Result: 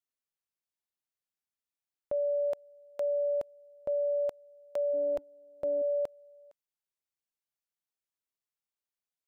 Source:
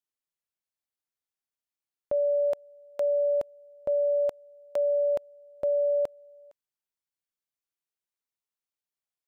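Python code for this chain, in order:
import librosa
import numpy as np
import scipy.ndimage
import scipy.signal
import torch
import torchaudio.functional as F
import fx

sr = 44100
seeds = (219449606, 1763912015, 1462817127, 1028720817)

p1 = fx.octave_divider(x, sr, octaves=1, level_db=-6.0, at=(4.93, 5.82))
p2 = fx.level_steps(p1, sr, step_db=21)
p3 = p1 + (p2 * 10.0 ** (-2.0 / 20.0))
y = p3 * 10.0 ** (-5.5 / 20.0)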